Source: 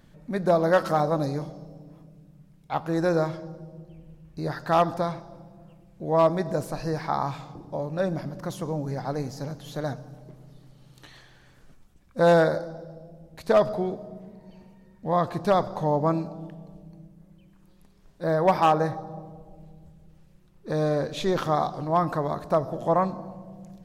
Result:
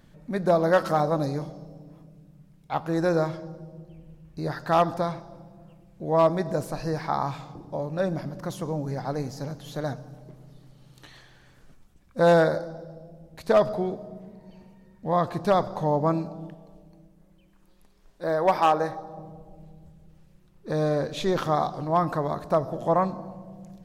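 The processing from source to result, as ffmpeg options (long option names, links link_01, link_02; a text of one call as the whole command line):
ffmpeg -i in.wav -filter_complex "[0:a]asettb=1/sr,asplit=3[link_01][link_02][link_03];[link_01]atrim=end=16.544[link_04];[link_02]atrim=start=16.54:end=19.19,asetpts=PTS-STARTPTS,afade=type=in:duration=0.004:curve=qsin,afade=type=out:start_time=2.646:duration=0.004:curve=qsin,equalizer=frequency=130:width_type=o:width=1.6:gain=-9.5[link_05];[link_03]atrim=start=19.186[link_06];[link_04][link_05]acrossfade=duration=0.004:curve1=hsin:curve2=qsin[link_07];[link_07][link_06]acrossfade=duration=0.004:curve1=qsin:curve2=hsin" out.wav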